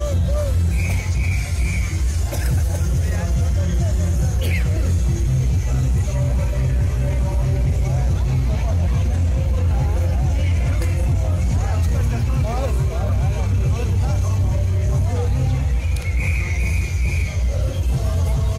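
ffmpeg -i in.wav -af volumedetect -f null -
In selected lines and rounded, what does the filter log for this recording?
mean_volume: -18.0 dB
max_volume: -10.5 dB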